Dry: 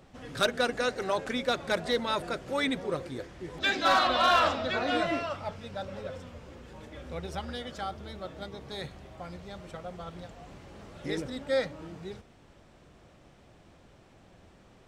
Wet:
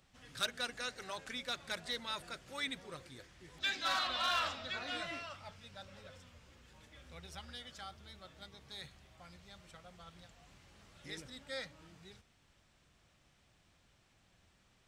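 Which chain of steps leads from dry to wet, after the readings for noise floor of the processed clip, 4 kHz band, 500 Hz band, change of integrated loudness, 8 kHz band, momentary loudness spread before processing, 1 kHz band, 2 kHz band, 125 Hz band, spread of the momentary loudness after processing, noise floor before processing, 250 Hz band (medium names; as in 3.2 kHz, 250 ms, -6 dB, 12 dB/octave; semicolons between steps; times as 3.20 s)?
-71 dBFS, -6.0 dB, -18.0 dB, -10.0 dB, -4.5 dB, 22 LU, -13.0 dB, -9.0 dB, -13.5 dB, 23 LU, -58 dBFS, -17.0 dB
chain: amplifier tone stack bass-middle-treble 5-5-5; trim +1.5 dB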